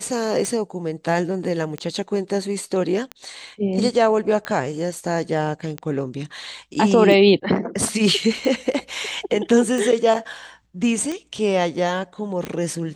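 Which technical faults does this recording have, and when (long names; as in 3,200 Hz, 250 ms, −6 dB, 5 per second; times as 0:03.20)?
scratch tick 45 rpm −14 dBFS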